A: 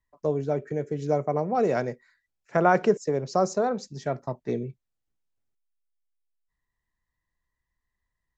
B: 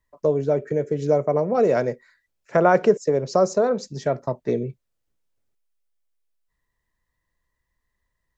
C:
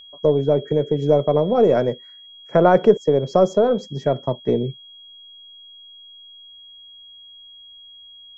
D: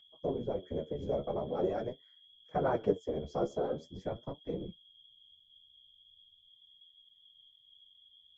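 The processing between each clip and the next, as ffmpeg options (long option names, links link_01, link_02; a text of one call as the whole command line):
ffmpeg -i in.wav -filter_complex "[0:a]equalizer=frequency=530:width_type=o:width=0.76:gain=5,bandreject=frequency=770:width=12,asplit=2[link_01][link_02];[link_02]acompressor=threshold=-27dB:ratio=6,volume=-1.5dB[link_03];[link_01][link_03]amix=inputs=2:normalize=0" out.wav
ffmpeg -i in.wav -af "aeval=exprs='val(0)+0.0158*sin(2*PI*3300*n/s)':channel_layout=same,aeval=exprs='0.562*(cos(1*acos(clip(val(0)/0.562,-1,1)))-cos(1*PI/2))+0.0112*(cos(6*acos(clip(val(0)/0.562,-1,1)))-cos(6*PI/2))':channel_layout=same,tiltshelf=frequency=1500:gain=6,volume=-1.5dB" out.wav
ffmpeg -i in.wav -af "afftfilt=real='hypot(re,im)*cos(2*PI*random(0))':imag='hypot(re,im)*sin(2*PI*random(1))':win_size=512:overlap=0.75,flanger=delay=5.7:depth=8.6:regen=43:speed=0.43:shape=sinusoidal,volume=-7.5dB" out.wav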